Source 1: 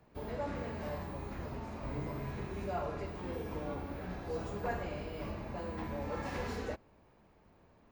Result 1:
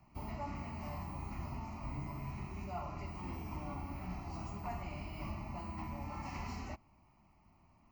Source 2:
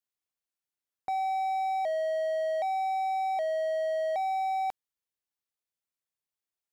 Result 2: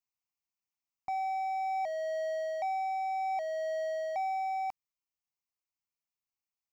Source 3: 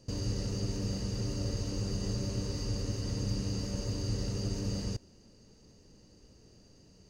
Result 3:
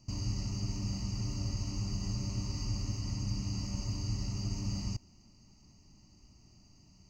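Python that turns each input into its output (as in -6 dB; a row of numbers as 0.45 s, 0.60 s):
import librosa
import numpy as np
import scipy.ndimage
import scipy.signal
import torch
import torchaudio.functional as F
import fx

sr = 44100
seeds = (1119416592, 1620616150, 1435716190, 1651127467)

y = fx.fixed_phaser(x, sr, hz=2400.0, stages=8)
y = fx.rider(y, sr, range_db=10, speed_s=0.5)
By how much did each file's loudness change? -3.5 LU, -4.0 LU, -1.5 LU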